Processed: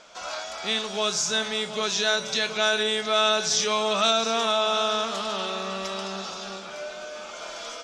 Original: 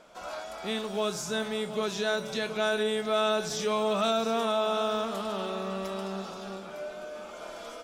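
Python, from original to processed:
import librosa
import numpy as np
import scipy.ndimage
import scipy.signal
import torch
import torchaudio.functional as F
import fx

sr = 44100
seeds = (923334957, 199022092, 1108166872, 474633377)

y = fx.curve_eq(x, sr, hz=(310.0, 6300.0, 13000.0), db=(0, 15, -8))
y = F.gain(torch.from_numpy(y), -1.5).numpy()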